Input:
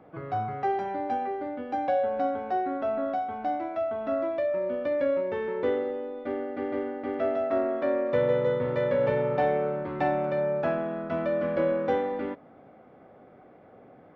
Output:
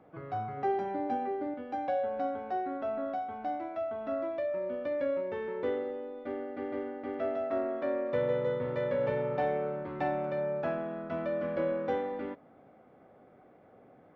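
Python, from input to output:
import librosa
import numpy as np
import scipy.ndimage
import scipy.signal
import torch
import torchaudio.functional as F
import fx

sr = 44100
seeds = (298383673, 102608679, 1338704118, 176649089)

y = fx.peak_eq(x, sr, hz=270.0, db=6.5, octaves=1.7, at=(0.57, 1.54))
y = F.gain(torch.from_numpy(y), -5.5).numpy()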